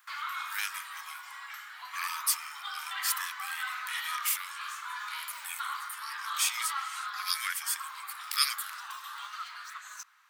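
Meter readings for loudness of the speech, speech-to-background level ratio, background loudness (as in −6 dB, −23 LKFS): −33.5 LKFS, 5.0 dB, −38.5 LKFS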